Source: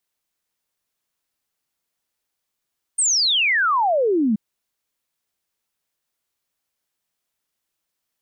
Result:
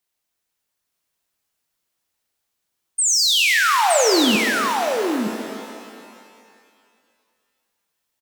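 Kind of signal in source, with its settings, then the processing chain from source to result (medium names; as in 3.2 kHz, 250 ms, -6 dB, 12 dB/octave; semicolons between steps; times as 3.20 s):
log sweep 9 kHz -> 200 Hz 1.38 s -15.5 dBFS
delay 918 ms -4.5 dB; pitch-shifted reverb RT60 2.2 s, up +12 st, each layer -8 dB, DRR 4 dB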